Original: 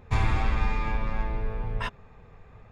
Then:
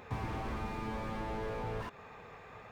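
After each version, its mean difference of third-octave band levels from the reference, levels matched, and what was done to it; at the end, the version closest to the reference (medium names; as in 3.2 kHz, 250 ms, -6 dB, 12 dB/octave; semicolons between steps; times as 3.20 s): 6.5 dB: high-pass 590 Hz 6 dB/octave; compression, threshold -35 dBFS, peak gain reduction 6.5 dB; slew-rate limiter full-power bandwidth 3.8 Hz; trim +8 dB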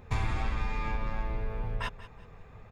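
3.0 dB: treble shelf 5.8 kHz +4.5 dB; compression 2:1, threshold -30 dBFS, peak gain reduction 7 dB; feedback delay 184 ms, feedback 31%, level -16 dB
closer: second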